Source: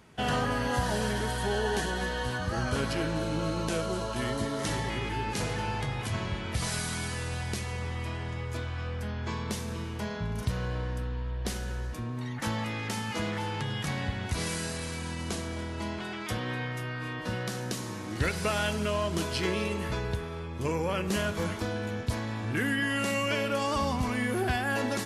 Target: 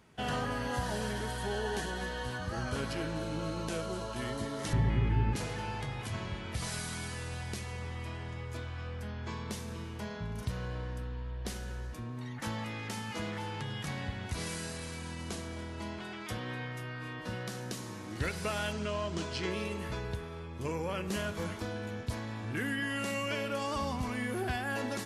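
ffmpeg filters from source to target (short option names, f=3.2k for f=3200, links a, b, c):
-filter_complex "[0:a]asettb=1/sr,asplit=3[a][b][c];[a]atrim=end=4.734[d];[b]atrim=start=4.73:end=5.36,asetpts=PTS-STARTPTS,afade=t=in:d=0.004:c=qsin,afade=t=out:st=0.626:d=0.004:c=qsin,bass=f=250:g=14,treble=f=4k:g=-15[e];[c]atrim=start=5.356[f];[d][e]acrossfade=d=0.004:c1=hsin:c2=qsin[g];[g][f]acrossfade=d=0.004:c1=qsin:c2=hsin,asettb=1/sr,asplit=3[h][i][j];[h]atrim=end=18.724[k];[i]atrim=start=18.72:end=19.51,asetpts=PTS-STARTPTS,afade=t=in:d=0.004:c=qsin,afade=t=out:st=0.786:d=0.004:c=qsin,lowpass=f=7.8k:w=0.5412,lowpass=f=7.8k:w=1.3066[l];[j]atrim=start=19.506[m];[k][l]acrossfade=d=0.004:c1=hsin:c2=qsin[n];[n][m]acrossfade=d=0.004:c1=qsin:c2=hsin,volume=-5.5dB"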